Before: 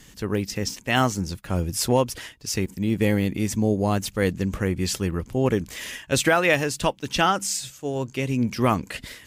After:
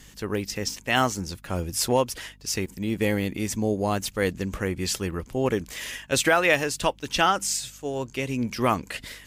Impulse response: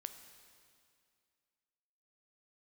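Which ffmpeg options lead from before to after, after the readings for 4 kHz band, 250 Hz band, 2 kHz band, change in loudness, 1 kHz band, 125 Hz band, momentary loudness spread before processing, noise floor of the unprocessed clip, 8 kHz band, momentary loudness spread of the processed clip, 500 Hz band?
0.0 dB, −4.0 dB, 0.0 dB, −1.5 dB, −0.5 dB, −5.5 dB, 7 LU, −51 dBFS, 0.0 dB, 9 LU, −1.5 dB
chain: -af "equalizer=frequency=130:width=0.54:gain=-6,aeval=exprs='val(0)+0.00224*(sin(2*PI*50*n/s)+sin(2*PI*2*50*n/s)/2+sin(2*PI*3*50*n/s)/3+sin(2*PI*4*50*n/s)/4+sin(2*PI*5*50*n/s)/5)':channel_layout=same"

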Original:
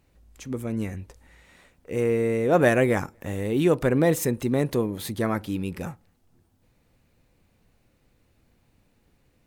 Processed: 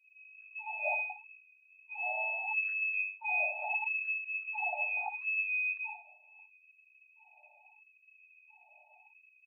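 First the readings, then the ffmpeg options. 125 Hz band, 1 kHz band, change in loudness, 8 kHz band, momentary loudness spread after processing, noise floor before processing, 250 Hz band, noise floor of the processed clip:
below −40 dB, −7.0 dB, −8.0 dB, below −40 dB, 12 LU, −66 dBFS, below −40 dB, −65 dBFS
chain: -filter_complex "[0:a]aecho=1:1:61|122|183:0.316|0.0791|0.0198,asplit=2[link_01][link_02];[link_02]highpass=frequency=720:poles=1,volume=23dB,asoftclip=type=tanh:threshold=-6.5dB[link_03];[link_01][link_03]amix=inputs=2:normalize=0,lowpass=frequency=1200:poles=1,volume=-6dB,aecho=1:1:7.5:0.58,afftfilt=real='re*(1-between(b*sr/4096,100,1700))':imag='im*(1-between(b*sr/4096,100,1700))':win_size=4096:overlap=0.75,adynamicequalizer=threshold=0.00141:dfrequency=930:dqfactor=5.1:tfrequency=930:tqfactor=5.1:attack=5:release=100:ratio=0.375:range=1.5:mode=cutabove:tftype=bell,acontrast=55,lowpass=frequency=2200:width_type=q:width=0.5098,lowpass=frequency=2200:width_type=q:width=0.6013,lowpass=frequency=2200:width_type=q:width=0.9,lowpass=frequency=2200:width_type=q:width=2.563,afreqshift=-2600,acompressor=threshold=-32dB:ratio=2,afftfilt=real='re*gte(b*sr/1024,560*pow(1500/560,0.5+0.5*sin(2*PI*0.76*pts/sr)))':imag='im*gte(b*sr/1024,560*pow(1500/560,0.5+0.5*sin(2*PI*0.76*pts/sr)))':win_size=1024:overlap=0.75"

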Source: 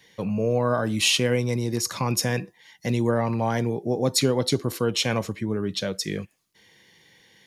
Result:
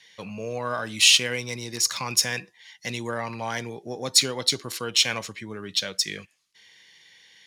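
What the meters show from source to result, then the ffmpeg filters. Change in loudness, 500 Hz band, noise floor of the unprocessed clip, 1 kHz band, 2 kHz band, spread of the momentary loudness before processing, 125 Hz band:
+1.0 dB, −8.5 dB, −61 dBFS, −3.0 dB, +3.0 dB, 8 LU, −11.5 dB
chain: -af "adynamicsmooth=sensitivity=6:basefreq=7300,tiltshelf=frequency=1100:gain=-10,volume=-2dB"

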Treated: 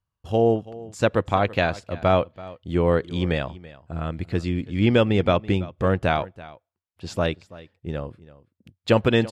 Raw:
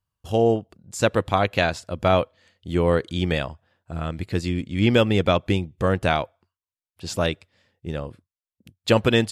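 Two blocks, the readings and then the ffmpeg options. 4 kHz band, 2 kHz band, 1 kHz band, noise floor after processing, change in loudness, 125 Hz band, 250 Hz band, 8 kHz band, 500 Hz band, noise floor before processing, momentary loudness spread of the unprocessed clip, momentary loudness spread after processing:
−4.0 dB, −1.5 dB, −0.5 dB, −84 dBFS, −0.5 dB, 0.0 dB, 0.0 dB, can't be measured, 0.0 dB, below −85 dBFS, 15 LU, 17 LU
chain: -filter_complex "[0:a]lowpass=frequency=2800:poles=1,asplit=2[link_01][link_02];[link_02]aecho=0:1:332:0.112[link_03];[link_01][link_03]amix=inputs=2:normalize=0"

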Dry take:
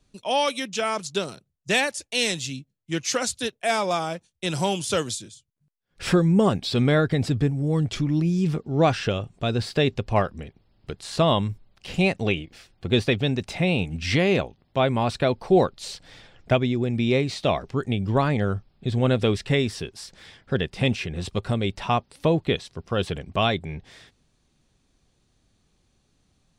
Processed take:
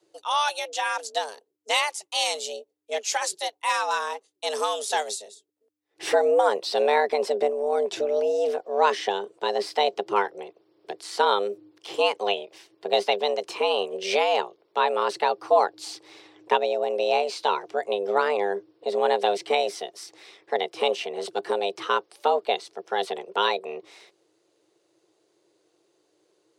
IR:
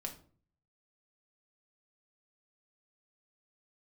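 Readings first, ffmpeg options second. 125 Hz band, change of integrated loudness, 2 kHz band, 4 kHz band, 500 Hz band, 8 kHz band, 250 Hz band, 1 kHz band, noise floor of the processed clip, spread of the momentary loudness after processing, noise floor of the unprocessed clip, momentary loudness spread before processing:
below −35 dB, −1.0 dB, −1.0 dB, 0.0 dB, +1.0 dB, −1.0 dB, −17.0 dB, +4.5 dB, −70 dBFS, 12 LU, −69 dBFS, 12 LU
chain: -af "afreqshift=300,tremolo=f=200:d=0.333"

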